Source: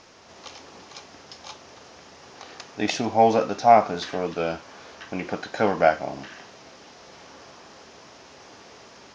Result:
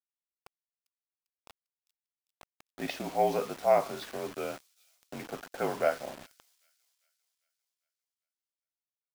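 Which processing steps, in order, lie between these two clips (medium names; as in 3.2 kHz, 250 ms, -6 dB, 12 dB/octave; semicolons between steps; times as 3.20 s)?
level-controlled noise filter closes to 880 Hz, open at -15.5 dBFS; high-pass 250 Hz 12 dB/octave; frequency shift -46 Hz; word length cut 6-bit, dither none; on a send: feedback echo behind a high-pass 398 ms, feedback 50%, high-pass 4.7 kHz, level -16.5 dB; on the sum: trim -9 dB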